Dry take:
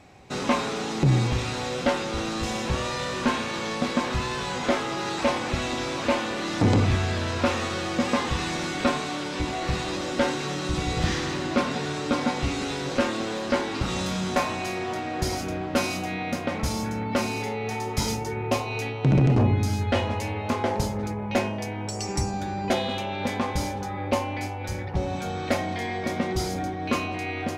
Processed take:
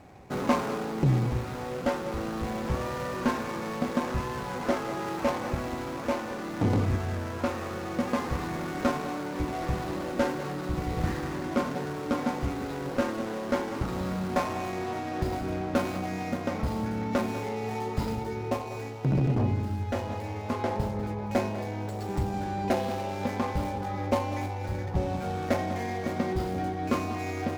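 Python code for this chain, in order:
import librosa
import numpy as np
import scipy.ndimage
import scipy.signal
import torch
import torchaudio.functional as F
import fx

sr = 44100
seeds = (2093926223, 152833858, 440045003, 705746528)

p1 = scipy.ndimage.median_filter(x, 15, mode='constant')
p2 = fx.rider(p1, sr, range_db=10, speed_s=2.0)
p3 = p2 + fx.echo_single(p2, sr, ms=195, db=-14.0, dry=0)
y = p3 * 10.0 ** (-3.5 / 20.0)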